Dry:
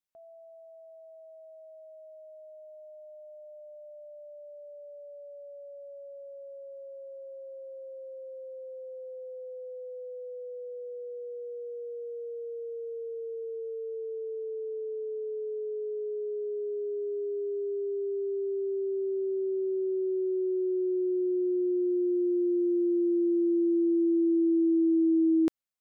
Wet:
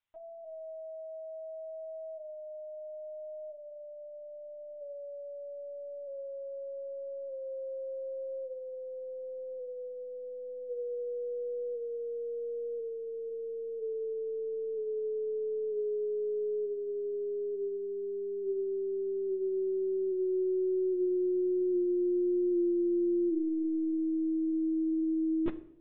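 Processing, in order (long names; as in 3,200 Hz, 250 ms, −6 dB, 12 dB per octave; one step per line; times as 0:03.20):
high-pass filter 580 Hz 12 dB per octave
linear-prediction vocoder at 8 kHz pitch kept
on a send: convolution reverb RT60 0.70 s, pre-delay 8 ms, DRR 9.5 dB
on the sum: level +6 dB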